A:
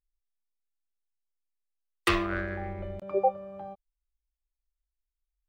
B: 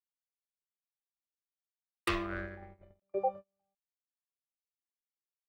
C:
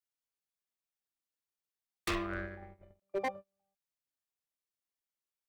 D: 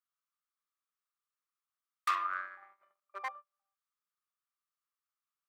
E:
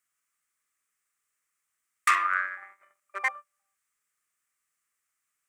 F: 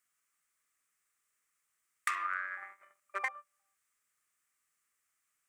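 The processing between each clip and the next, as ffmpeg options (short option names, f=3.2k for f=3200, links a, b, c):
-af "agate=range=-38dB:threshold=-33dB:ratio=16:detection=peak,volume=-7dB"
-af "aeval=exprs='0.0473*(abs(mod(val(0)/0.0473+3,4)-2)-1)':c=same"
-af "highpass=f=1.2k:t=q:w=7.7,volume=-5dB"
-af "equalizer=f=1k:t=o:w=1:g=-4,equalizer=f=2k:t=o:w=1:g=11,equalizer=f=4k:t=o:w=1:g=-7,equalizer=f=8k:t=o:w=1:g=12,volume=7dB"
-af "acompressor=threshold=-31dB:ratio=10"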